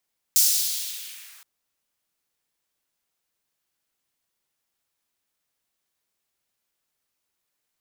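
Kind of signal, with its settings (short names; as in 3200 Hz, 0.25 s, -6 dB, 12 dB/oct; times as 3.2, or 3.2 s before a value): swept filtered noise white, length 1.07 s highpass, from 5800 Hz, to 1200 Hz, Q 1.5, linear, gain ramp -34 dB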